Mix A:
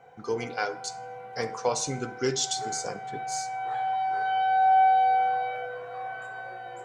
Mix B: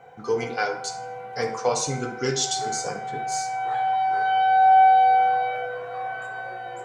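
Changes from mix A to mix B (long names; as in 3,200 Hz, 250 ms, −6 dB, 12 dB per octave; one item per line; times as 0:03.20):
speech: send +10.5 dB
background +5.0 dB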